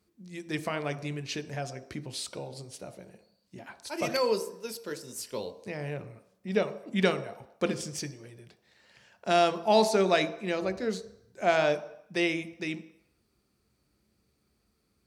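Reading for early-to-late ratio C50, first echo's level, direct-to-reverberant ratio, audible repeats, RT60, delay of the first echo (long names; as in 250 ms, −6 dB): 13.5 dB, no echo audible, 9.5 dB, no echo audible, 0.75 s, no echo audible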